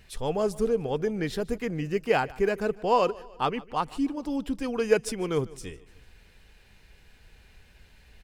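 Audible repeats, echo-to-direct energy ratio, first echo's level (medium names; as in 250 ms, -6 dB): 3, -20.5 dB, -21.5 dB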